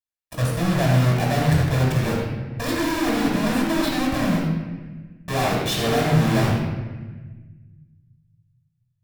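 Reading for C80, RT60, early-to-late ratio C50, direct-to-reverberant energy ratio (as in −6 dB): 2.5 dB, 1.3 s, 0.0 dB, −4.0 dB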